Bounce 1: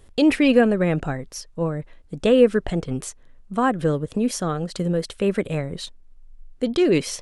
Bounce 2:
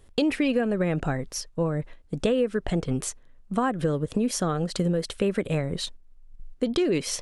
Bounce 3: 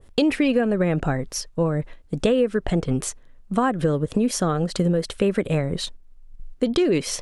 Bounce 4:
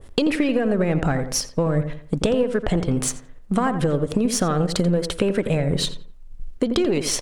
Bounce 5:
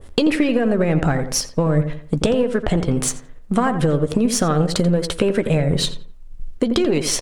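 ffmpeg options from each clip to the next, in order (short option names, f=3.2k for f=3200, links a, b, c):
-af "agate=range=-6dB:threshold=-41dB:ratio=16:detection=peak,acompressor=threshold=-23dB:ratio=6,volume=2dB"
-af "adynamicequalizer=threshold=0.01:dfrequency=2000:dqfactor=0.7:tfrequency=2000:tqfactor=0.7:attack=5:release=100:ratio=0.375:range=1.5:mode=cutabove:tftype=highshelf,volume=4dB"
-filter_complex "[0:a]aeval=exprs='if(lt(val(0),0),0.708*val(0),val(0))':c=same,acompressor=threshold=-25dB:ratio=6,asplit=2[a][b];[b]adelay=86,lowpass=f=1.8k:p=1,volume=-9dB,asplit=2[c][d];[d]adelay=86,lowpass=f=1.8k:p=1,volume=0.36,asplit=2[e][f];[f]adelay=86,lowpass=f=1.8k:p=1,volume=0.36,asplit=2[g][h];[h]adelay=86,lowpass=f=1.8k:p=1,volume=0.36[i];[c][e][g][i]amix=inputs=4:normalize=0[j];[a][j]amix=inputs=2:normalize=0,volume=7.5dB"
-filter_complex "[0:a]asplit=2[a][b];[b]adelay=13,volume=-13dB[c];[a][c]amix=inputs=2:normalize=0,volume=2.5dB"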